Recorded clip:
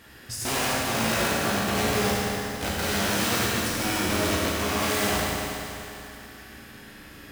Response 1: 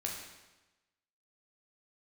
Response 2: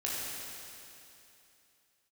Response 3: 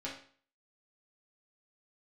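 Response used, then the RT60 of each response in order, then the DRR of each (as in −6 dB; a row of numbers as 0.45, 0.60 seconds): 2; 1.1, 2.8, 0.45 seconds; −1.5, −6.5, −6.0 decibels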